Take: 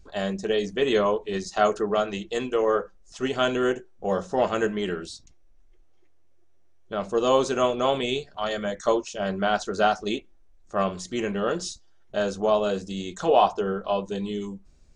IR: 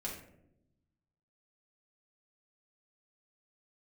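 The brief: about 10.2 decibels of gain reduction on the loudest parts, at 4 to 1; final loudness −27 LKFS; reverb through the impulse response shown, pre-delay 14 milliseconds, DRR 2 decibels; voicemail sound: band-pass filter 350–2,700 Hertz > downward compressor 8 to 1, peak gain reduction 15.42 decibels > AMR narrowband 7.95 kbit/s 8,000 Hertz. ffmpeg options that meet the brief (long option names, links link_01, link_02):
-filter_complex "[0:a]acompressor=threshold=-27dB:ratio=4,asplit=2[link_01][link_02];[1:a]atrim=start_sample=2205,adelay=14[link_03];[link_02][link_03]afir=irnorm=-1:irlink=0,volume=-2.5dB[link_04];[link_01][link_04]amix=inputs=2:normalize=0,highpass=350,lowpass=2700,acompressor=threshold=-38dB:ratio=8,volume=16dB" -ar 8000 -c:a libopencore_amrnb -b:a 7950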